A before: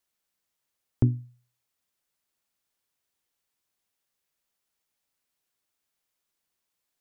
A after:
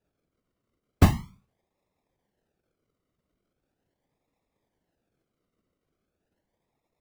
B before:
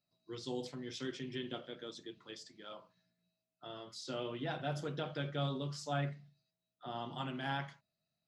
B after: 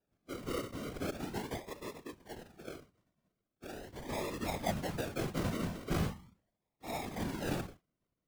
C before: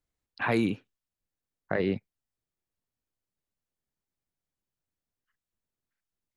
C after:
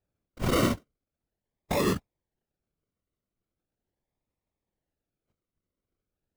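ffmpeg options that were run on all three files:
-af "acrusher=samples=41:mix=1:aa=0.000001:lfo=1:lforange=24.6:lforate=0.4,afftfilt=real='hypot(re,im)*cos(2*PI*random(0))':imag='hypot(re,im)*sin(2*PI*random(1))':win_size=512:overlap=0.75,volume=8.5dB"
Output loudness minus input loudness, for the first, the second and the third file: +5.0, +2.5, +1.5 LU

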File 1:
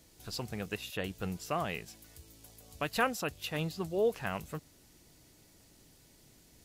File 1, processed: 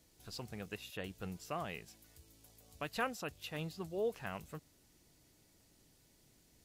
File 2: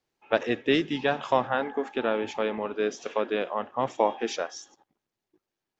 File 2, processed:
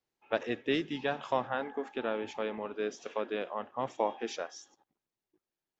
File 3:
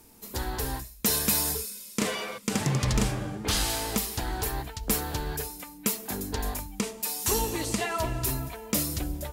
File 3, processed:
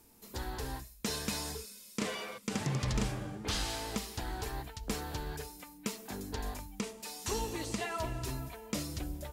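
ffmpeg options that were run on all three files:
-filter_complex "[0:a]acrossover=split=7700[link_01][link_02];[link_02]acompressor=threshold=-45dB:ratio=4:attack=1:release=60[link_03];[link_01][link_03]amix=inputs=2:normalize=0,volume=-7dB"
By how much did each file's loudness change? −7.0, −7.0, −9.0 LU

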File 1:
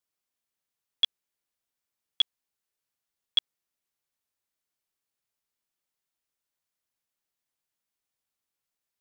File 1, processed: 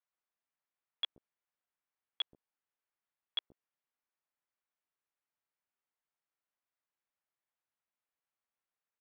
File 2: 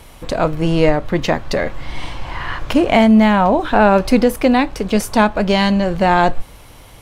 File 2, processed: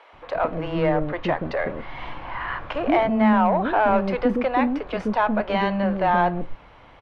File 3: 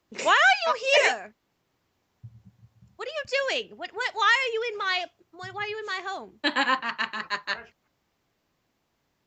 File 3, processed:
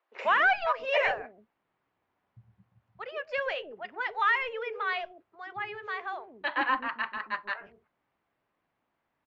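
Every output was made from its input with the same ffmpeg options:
-filter_complex "[0:a]asplit=2[link_01][link_02];[link_02]highpass=frequency=720:poles=1,volume=13dB,asoftclip=type=tanh:threshold=-1.5dB[link_03];[link_01][link_03]amix=inputs=2:normalize=0,lowpass=frequency=1400:poles=1,volume=-6dB,lowpass=2800,acrossover=split=430[link_04][link_05];[link_04]adelay=130[link_06];[link_06][link_05]amix=inputs=2:normalize=0,volume=-6.5dB"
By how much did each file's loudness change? −12.5, −7.5, −5.0 LU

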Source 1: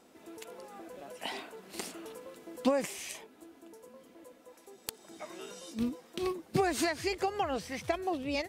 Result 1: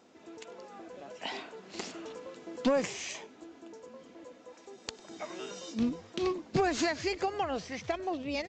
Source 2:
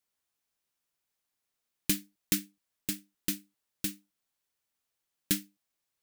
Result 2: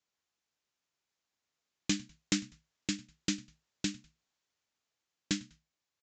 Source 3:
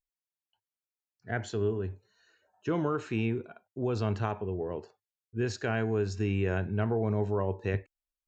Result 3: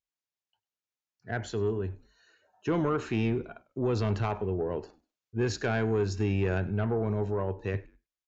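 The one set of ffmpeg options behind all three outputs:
-filter_complex "[0:a]highpass=54,dynaudnorm=framelen=370:gausssize=11:maxgain=4dB,aresample=16000,asoftclip=type=tanh:threshold=-19dB,aresample=44100,asplit=3[link_01][link_02][link_03];[link_02]adelay=99,afreqshift=-71,volume=-23dB[link_04];[link_03]adelay=198,afreqshift=-142,volume=-31.9dB[link_05];[link_01][link_04][link_05]amix=inputs=3:normalize=0"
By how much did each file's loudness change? +0.5, −3.0, +1.5 LU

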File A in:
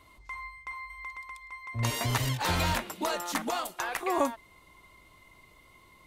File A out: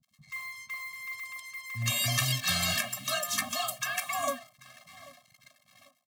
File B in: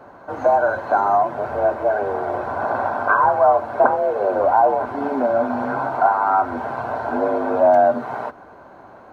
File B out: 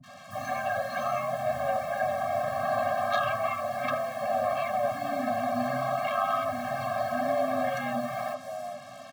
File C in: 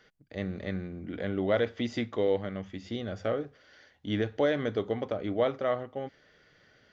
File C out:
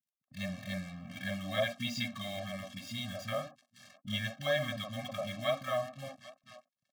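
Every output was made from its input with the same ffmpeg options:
-filter_complex "[0:a]asplit=2[link_01][link_02];[link_02]acontrast=45,volume=0.5dB[link_03];[link_01][link_03]amix=inputs=2:normalize=0,equalizer=frequency=370:width_type=o:width=2.9:gain=-15,asplit=2[link_04][link_05];[link_05]adelay=790,lowpass=frequency=2900:poles=1,volume=-20dB,asplit=2[link_06][link_07];[link_07]adelay=790,lowpass=frequency=2900:poles=1,volume=0.53,asplit=2[link_08][link_09];[link_09]adelay=790,lowpass=frequency=2900:poles=1,volume=0.53,asplit=2[link_10][link_11];[link_11]adelay=790,lowpass=frequency=2900:poles=1,volume=0.53[link_12];[link_06][link_08][link_10][link_12]amix=inputs=4:normalize=0[link_13];[link_04][link_13]amix=inputs=2:normalize=0,acrusher=bits=6:mix=0:aa=0.5,highpass=frequency=130:width=0.5412,highpass=frequency=130:width=1.3066,afftfilt=real='re*lt(hypot(re,im),0.708)':imag='im*lt(hypot(re,im),0.708)':win_size=1024:overlap=0.75,agate=range=-33dB:threshold=-49dB:ratio=3:detection=peak,acrossover=split=250|1100[link_14][link_15][link_16];[link_16]adelay=30[link_17];[link_15]adelay=70[link_18];[link_14][link_18][link_17]amix=inputs=3:normalize=0,acompressor=mode=upward:threshold=-49dB:ratio=2.5,afftfilt=real='re*eq(mod(floor(b*sr/1024/260),2),0)':imag='im*eq(mod(floor(b*sr/1024/260),2),0)':win_size=1024:overlap=0.75"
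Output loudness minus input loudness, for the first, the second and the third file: +1.0, −10.5, −5.0 LU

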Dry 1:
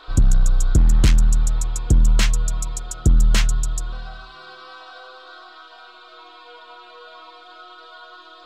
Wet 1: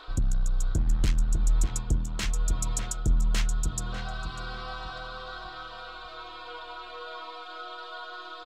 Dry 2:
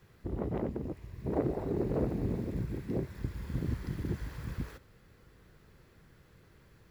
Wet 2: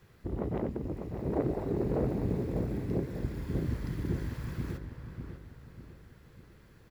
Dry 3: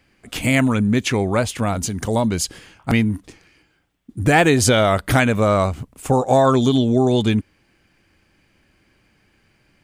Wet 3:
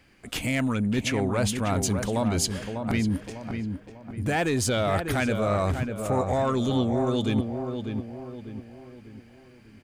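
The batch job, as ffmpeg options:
-filter_complex "[0:a]asoftclip=type=tanh:threshold=-7.5dB,areverse,acompressor=threshold=-24dB:ratio=6,areverse,asplit=2[link_01][link_02];[link_02]adelay=597,lowpass=frequency=1800:poles=1,volume=-6dB,asplit=2[link_03][link_04];[link_04]adelay=597,lowpass=frequency=1800:poles=1,volume=0.44,asplit=2[link_05][link_06];[link_06]adelay=597,lowpass=frequency=1800:poles=1,volume=0.44,asplit=2[link_07][link_08];[link_08]adelay=597,lowpass=frequency=1800:poles=1,volume=0.44,asplit=2[link_09][link_10];[link_10]adelay=597,lowpass=frequency=1800:poles=1,volume=0.44[link_11];[link_01][link_03][link_05][link_07][link_09][link_11]amix=inputs=6:normalize=0,volume=1dB"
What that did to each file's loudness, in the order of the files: −12.0, +1.5, −8.5 LU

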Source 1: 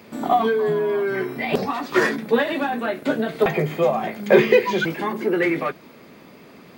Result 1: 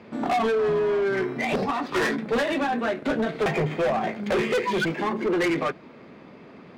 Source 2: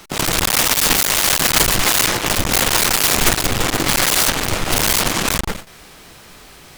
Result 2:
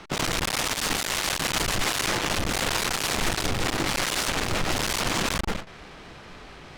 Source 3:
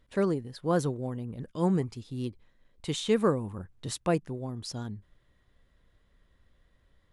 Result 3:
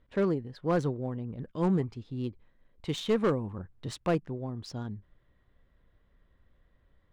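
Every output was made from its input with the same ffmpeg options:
-af "alimiter=limit=-6.5dB:level=0:latency=1:release=330,asoftclip=type=hard:threshold=-20dB,adynamicsmooth=sensitivity=5:basefreq=3200"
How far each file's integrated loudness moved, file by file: −4.0, −10.5, −1.0 LU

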